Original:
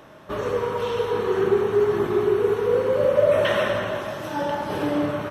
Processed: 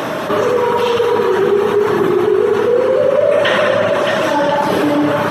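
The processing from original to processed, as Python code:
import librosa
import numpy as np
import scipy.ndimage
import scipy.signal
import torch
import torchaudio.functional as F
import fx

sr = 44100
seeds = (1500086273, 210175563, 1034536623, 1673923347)

y = scipy.signal.sosfilt(scipy.signal.butter(2, 160.0, 'highpass', fs=sr, output='sos'), x)
y = fx.dereverb_blind(y, sr, rt60_s=0.79)
y = fx.lowpass(y, sr, hz=10000.0, slope=12, at=(2.25, 4.58))
y = fx.echo_multitap(y, sr, ms=(64, 620), db=(-6.0, -9.0))
y = fx.env_flatten(y, sr, amount_pct=70)
y = F.gain(torch.from_numpy(y), 5.0).numpy()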